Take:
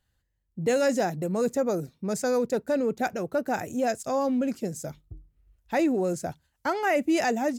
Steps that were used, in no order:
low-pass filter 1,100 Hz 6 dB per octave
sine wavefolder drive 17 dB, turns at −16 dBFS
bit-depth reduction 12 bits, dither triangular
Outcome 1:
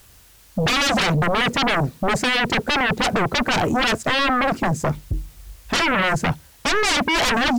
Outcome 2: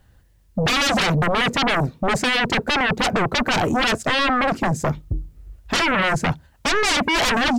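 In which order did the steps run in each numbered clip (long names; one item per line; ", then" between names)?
low-pass filter, then bit-depth reduction, then sine wavefolder
low-pass filter, then sine wavefolder, then bit-depth reduction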